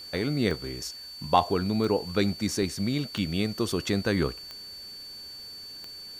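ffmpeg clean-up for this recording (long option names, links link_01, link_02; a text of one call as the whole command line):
ffmpeg -i in.wav -af "adeclick=threshold=4,bandreject=frequency=4500:width=30,afwtdn=0.002" out.wav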